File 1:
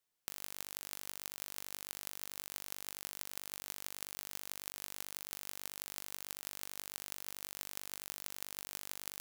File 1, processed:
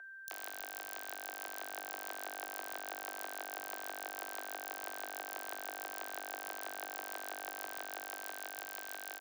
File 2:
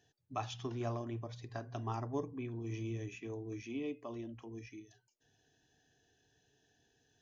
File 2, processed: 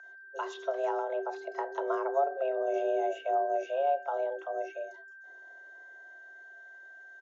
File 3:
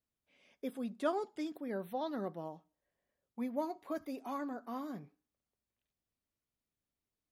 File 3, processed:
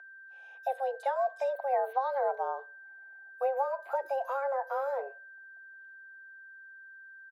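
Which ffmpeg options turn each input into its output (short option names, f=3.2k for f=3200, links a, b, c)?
-filter_complex "[0:a]acrossover=split=1400[a][b];[a]dynaudnorm=f=260:g=11:m=4.5dB[c];[c][b]amix=inputs=2:normalize=0,acrossover=split=4200[d][e];[d]adelay=30[f];[f][e]amix=inputs=2:normalize=0,acrossover=split=210[g][h];[h]acompressor=threshold=-36dB:ratio=6[i];[g][i]amix=inputs=2:normalize=0,highshelf=f=4k:g=-4.5,aeval=exprs='val(0)+0.00282*sin(2*PI*1300*n/s)':c=same,afreqshift=270,equalizer=f=720:t=o:w=0.49:g=12,volume=2.5dB"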